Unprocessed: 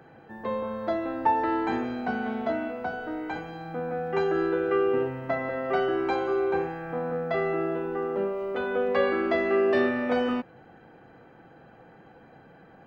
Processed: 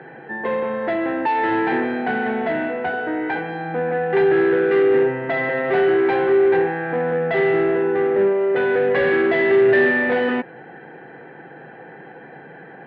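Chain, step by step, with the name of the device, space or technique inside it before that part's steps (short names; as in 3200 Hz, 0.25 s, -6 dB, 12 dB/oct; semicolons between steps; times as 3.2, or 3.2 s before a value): overdrive pedal into a guitar cabinet (overdrive pedal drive 23 dB, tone 1300 Hz, clips at -10.5 dBFS; speaker cabinet 91–3800 Hz, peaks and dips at 91 Hz -5 dB, 150 Hz +8 dB, 390 Hz +5 dB, 620 Hz -4 dB, 1200 Hz -10 dB, 1800 Hz +9 dB)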